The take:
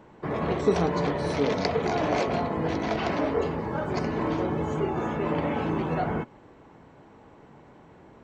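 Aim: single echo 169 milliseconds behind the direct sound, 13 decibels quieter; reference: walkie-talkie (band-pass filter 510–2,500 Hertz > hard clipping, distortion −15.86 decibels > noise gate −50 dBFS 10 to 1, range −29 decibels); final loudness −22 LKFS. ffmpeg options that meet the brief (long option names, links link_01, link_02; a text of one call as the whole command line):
ffmpeg -i in.wav -af "highpass=510,lowpass=2500,aecho=1:1:169:0.224,asoftclip=type=hard:threshold=-24.5dB,agate=range=-29dB:threshold=-50dB:ratio=10,volume=10dB" out.wav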